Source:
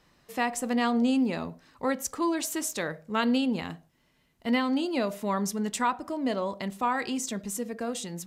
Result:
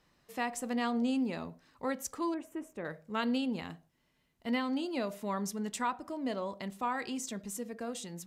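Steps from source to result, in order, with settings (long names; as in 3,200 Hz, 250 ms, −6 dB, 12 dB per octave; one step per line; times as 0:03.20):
0:02.34–0:02.85: drawn EQ curve 410 Hz 0 dB, 2,700 Hz −11 dB, 4,200 Hz −29 dB, 8,800 Hz −20 dB
level −6.5 dB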